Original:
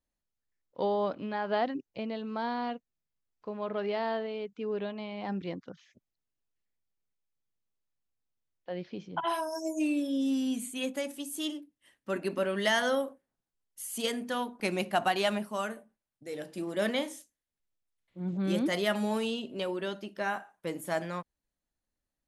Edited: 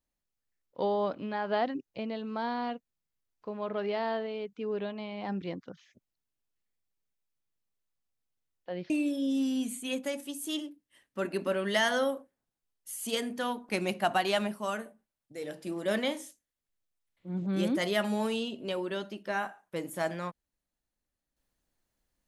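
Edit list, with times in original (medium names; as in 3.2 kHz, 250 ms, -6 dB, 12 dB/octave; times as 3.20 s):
8.90–9.81 s: delete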